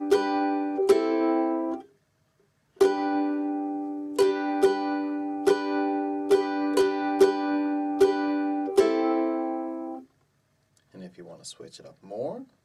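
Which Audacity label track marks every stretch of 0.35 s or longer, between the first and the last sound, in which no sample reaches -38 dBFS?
1.810000	2.810000	silence
10.000000	10.960000	silence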